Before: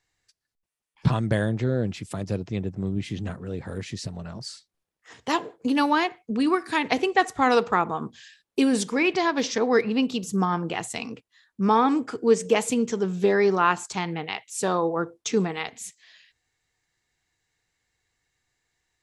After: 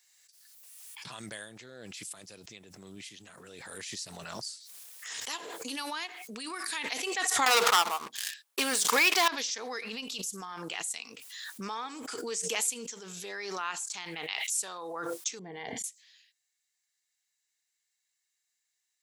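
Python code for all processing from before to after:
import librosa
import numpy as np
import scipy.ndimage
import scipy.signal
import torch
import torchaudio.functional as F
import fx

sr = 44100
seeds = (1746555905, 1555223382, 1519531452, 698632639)

y = fx.chain(x, sr, fx.peak_eq(hz=970.0, db=11.0, octaves=2.7),
    fx.leveller(passes=3),
    fx.upward_expand(threshold_db=-18.0, expansion=2.5), at=(7.46, 9.28))
y = fx.chain(y, sr, fx.moving_average(points=34),
    fx.low_shelf(hz=250.0, db=9.0), at=(15.39, 15.84))
y = np.diff(y, prepend=0.0)
y = fx.pre_swell(y, sr, db_per_s=23.0)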